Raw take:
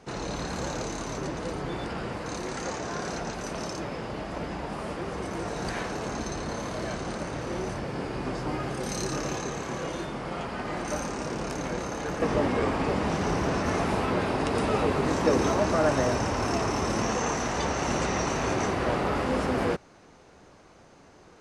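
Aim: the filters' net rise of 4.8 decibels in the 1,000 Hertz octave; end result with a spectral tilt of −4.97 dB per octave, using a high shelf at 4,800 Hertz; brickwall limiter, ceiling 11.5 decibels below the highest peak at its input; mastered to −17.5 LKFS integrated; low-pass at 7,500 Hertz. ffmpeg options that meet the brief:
ffmpeg -i in.wav -af "lowpass=7500,equalizer=frequency=1000:width_type=o:gain=6.5,highshelf=frequency=4800:gain=-8.5,volume=13.5dB,alimiter=limit=-7.5dB:level=0:latency=1" out.wav

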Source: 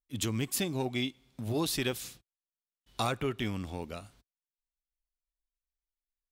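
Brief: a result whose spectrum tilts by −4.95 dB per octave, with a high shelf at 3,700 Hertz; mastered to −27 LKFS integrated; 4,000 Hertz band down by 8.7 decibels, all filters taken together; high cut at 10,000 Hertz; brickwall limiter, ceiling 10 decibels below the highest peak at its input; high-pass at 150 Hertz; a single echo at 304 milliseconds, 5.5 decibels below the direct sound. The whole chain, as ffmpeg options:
ffmpeg -i in.wav -af "highpass=150,lowpass=10000,highshelf=frequency=3700:gain=-7,equalizer=frequency=4000:width_type=o:gain=-6.5,alimiter=level_in=5.5dB:limit=-24dB:level=0:latency=1,volume=-5.5dB,aecho=1:1:304:0.531,volume=13dB" out.wav

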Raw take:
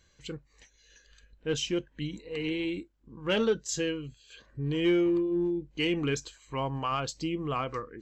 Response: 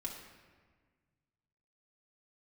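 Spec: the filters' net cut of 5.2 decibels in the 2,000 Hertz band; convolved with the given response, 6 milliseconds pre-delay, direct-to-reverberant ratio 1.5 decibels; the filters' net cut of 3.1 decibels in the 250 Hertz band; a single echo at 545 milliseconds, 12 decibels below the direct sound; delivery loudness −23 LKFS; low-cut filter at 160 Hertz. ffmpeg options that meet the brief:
-filter_complex "[0:a]highpass=160,equalizer=frequency=250:width_type=o:gain=-4.5,equalizer=frequency=2000:width_type=o:gain=-7,aecho=1:1:545:0.251,asplit=2[link_01][link_02];[1:a]atrim=start_sample=2205,adelay=6[link_03];[link_02][link_03]afir=irnorm=-1:irlink=0,volume=-0.5dB[link_04];[link_01][link_04]amix=inputs=2:normalize=0,volume=8dB"

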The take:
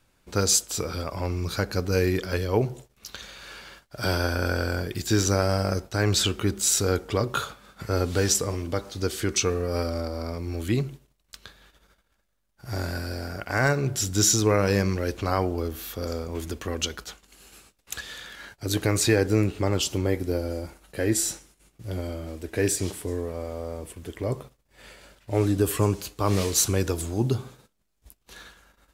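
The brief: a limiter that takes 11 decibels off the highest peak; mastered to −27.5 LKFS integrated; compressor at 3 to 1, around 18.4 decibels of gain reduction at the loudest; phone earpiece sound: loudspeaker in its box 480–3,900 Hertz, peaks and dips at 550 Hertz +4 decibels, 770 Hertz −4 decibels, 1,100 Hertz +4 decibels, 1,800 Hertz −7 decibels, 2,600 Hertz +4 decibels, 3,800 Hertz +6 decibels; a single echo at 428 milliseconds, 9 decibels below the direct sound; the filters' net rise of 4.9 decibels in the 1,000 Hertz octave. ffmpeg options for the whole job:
ffmpeg -i in.wav -af "equalizer=frequency=1000:width_type=o:gain=6,acompressor=threshold=-42dB:ratio=3,alimiter=level_in=8.5dB:limit=-24dB:level=0:latency=1,volume=-8.5dB,highpass=480,equalizer=frequency=550:width_type=q:width=4:gain=4,equalizer=frequency=770:width_type=q:width=4:gain=-4,equalizer=frequency=1100:width_type=q:width=4:gain=4,equalizer=frequency=1800:width_type=q:width=4:gain=-7,equalizer=frequency=2600:width_type=q:width=4:gain=4,equalizer=frequency=3800:width_type=q:width=4:gain=6,lowpass=frequency=3900:width=0.5412,lowpass=frequency=3900:width=1.3066,aecho=1:1:428:0.355,volume=20.5dB" out.wav

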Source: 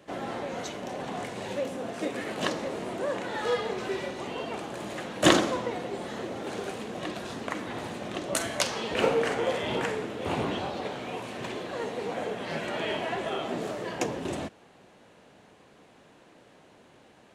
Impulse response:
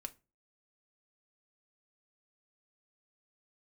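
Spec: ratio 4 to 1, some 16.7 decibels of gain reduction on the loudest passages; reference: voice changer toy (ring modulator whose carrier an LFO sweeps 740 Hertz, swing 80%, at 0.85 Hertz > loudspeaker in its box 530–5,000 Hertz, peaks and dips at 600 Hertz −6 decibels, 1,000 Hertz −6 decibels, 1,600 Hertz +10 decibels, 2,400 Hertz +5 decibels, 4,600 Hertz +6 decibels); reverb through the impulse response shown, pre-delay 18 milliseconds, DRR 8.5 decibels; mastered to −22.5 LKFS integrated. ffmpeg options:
-filter_complex "[0:a]acompressor=threshold=-35dB:ratio=4,asplit=2[link_01][link_02];[1:a]atrim=start_sample=2205,adelay=18[link_03];[link_02][link_03]afir=irnorm=-1:irlink=0,volume=-5dB[link_04];[link_01][link_04]amix=inputs=2:normalize=0,aeval=exprs='val(0)*sin(2*PI*740*n/s+740*0.8/0.85*sin(2*PI*0.85*n/s))':channel_layout=same,highpass=530,equalizer=frequency=600:width_type=q:width=4:gain=-6,equalizer=frequency=1000:width_type=q:width=4:gain=-6,equalizer=frequency=1600:width_type=q:width=4:gain=10,equalizer=frequency=2400:width_type=q:width=4:gain=5,equalizer=frequency=4600:width_type=q:width=4:gain=6,lowpass=frequency=5000:width=0.5412,lowpass=frequency=5000:width=1.3066,volume=15dB"

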